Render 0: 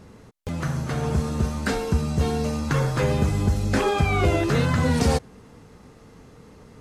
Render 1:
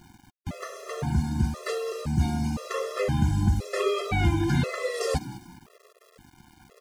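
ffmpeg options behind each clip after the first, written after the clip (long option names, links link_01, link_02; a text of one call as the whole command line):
ffmpeg -i in.wav -filter_complex "[0:a]asplit=4[link_01][link_02][link_03][link_04];[link_02]adelay=200,afreqshift=53,volume=-17dB[link_05];[link_03]adelay=400,afreqshift=106,volume=-27.2dB[link_06];[link_04]adelay=600,afreqshift=159,volume=-37.3dB[link_07];[link_01][link_05][link_06][link_07]amix=inputs=4:normalize=0,aeval=exprs='val(0)*gte(abs(val(0)),0.00668)':channel_layout=same,afftfilt=real='re*gt(sin(2*PI*0.97*pts/sr)*(1-2*mod(floor(b*sr/1024/350),2)),0)':imag='im*gt(sin(2*PI*0.97*pts/sr)*(1-2*mod(floor(b*sr/1024/350),2)),0)':win_size=1024:overlap=0.75,volume=-1dB" out.wav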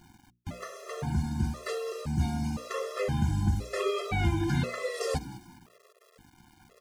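ffmpeg -i in.wav -af "bandreject=frequency=60:width_type=h:width=6,bandreject=frequency=120:width_type=h:width=6,bandreject=frequency=180:width_type=h:width=6,bandreject=frequency=240:width_type=h:width=6,bandreject=frequency=300:width_type=h:width=6,bandreject=frequency=360:width_type=h:width=6,bandreject=frequency=420:width_type=h:width=6,bandreject=frequency=480:width_type=h:width=6,volume=-3.5dB" out.wav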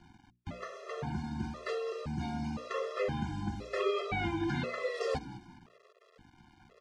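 ffmpeg -i in.wav -filter_complex "[0:a]lowpass=4100,acrossover=split=210|1000[link_01][link_02][link_03];[link_01]acompressor=threshold=-38dB:ratio=6[link_04];[link_04][link_02][link_03]amix=inputs=3:normalize=0,volume=-1.5dB" out.wav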